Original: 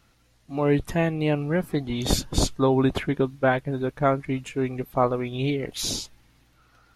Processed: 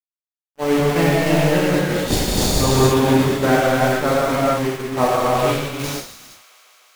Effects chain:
centre clipping without the shift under −24 dBFS
reverb whose tail is shaped and stops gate 500 ms flat, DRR −7.5 dB
downward expander −17 dBFS
delay with a high-pass on its return 151 ms, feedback 85%, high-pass 1,700 Hz, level −21 dB

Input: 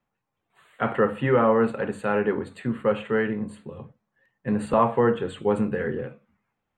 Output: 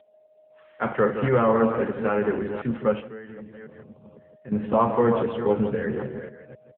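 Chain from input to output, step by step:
delay that plays each chunk backwards 262 ms, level −8.5 dB
single-tap delay 164 ms −9.5 dB
steady tone 620 Hz −50 dBFS
0:03.00–0:04.52: downward compressor 2.5 to 1, threshold −44 dBFS, peak gain reduction 17 dB
AMR narrowband 7.95 kbit/s 8,000 Hz

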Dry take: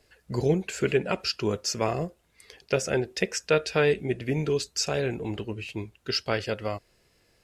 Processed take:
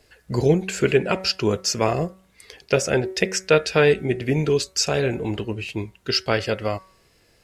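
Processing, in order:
hum removal 188.8 Hz, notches 12
level +6 dB

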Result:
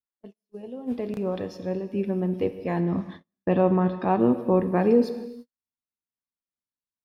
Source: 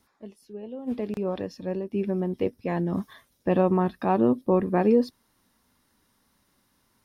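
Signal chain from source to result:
0:02.80–0:04.20: low-pass filter 4,400 Hz 12 dB per octave
reverb whose tail is shaped and stops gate 470 ms falling, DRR 9 dB
noise gate −40 dBFS, range −37 dB

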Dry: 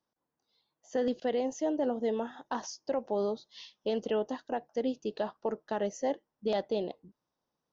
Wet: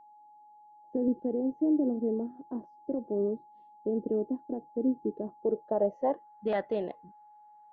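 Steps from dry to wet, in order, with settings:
low-pass filter sweep 330 Hz → 1,800 Hz, 0:05.37–0:06.40
steady tone 840 Hz −53 dBFS

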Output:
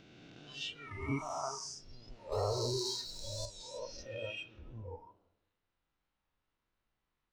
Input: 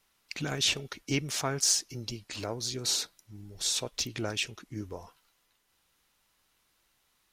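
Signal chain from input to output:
peak hold with a rise ahead of every peak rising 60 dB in 2.46 s
low-shelf EQ 180 Hz +4.5 dB
downward compressor 1.5 to 1, threshold −58 dBFS, peak gain reduction 14 dB
head-to-tape spacing loss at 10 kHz 27 dB
convolution reverb RT60 0.95 s, pre-delay 83 ms, DRR 5 dB
0:02.32–0:03.46: leveller curve on the samples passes 2
noise reduction from a noise print of the clip's start 20 dB
wow of a warped record 45 rpm, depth 100 cents
level +6.5 dB

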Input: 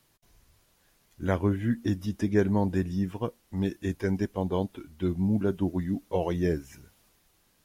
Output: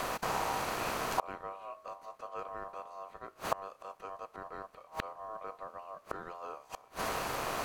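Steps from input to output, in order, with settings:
compressor on every frequency bin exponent 0.6
gate with flip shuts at −30 dBFS, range −34 dB
ring modulation 870 Hz
level +16.5 dB

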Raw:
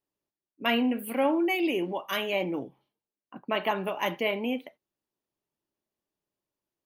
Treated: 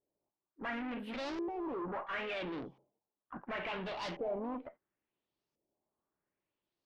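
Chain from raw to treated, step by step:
high-shelf EQ 3,400 Hz −5 dB
tube saturation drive 39 dB, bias 0.25
auto-filter low-pass saw up 0.72 Hz 510–5,800 Hz
pitch-shifted copies added +3 semitones −14 dB

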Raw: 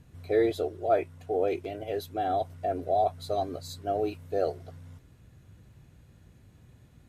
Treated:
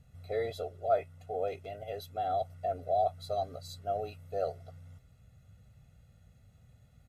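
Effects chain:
comb filter 1.5 ms, depth 81%
level −8 dB

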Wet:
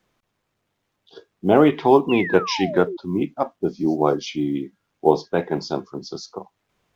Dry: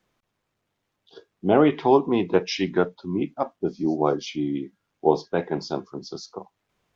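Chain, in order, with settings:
floating-point word with a short mantissa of 6 bits
sound drawn into the spectrogram fall, 0:02.09–0:02.97, 330–2,900 Hz −32 dBFS
level +3 dB

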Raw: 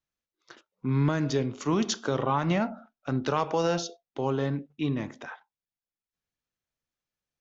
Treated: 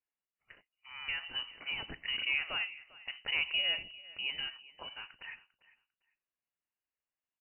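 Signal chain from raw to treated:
Butterworth high-pass 430 Hz 96 dB per octave
repeating echo 398 ms, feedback 19%, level −20 dB
voice inversion scrambler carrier 3,400 Hz
level −5 dB

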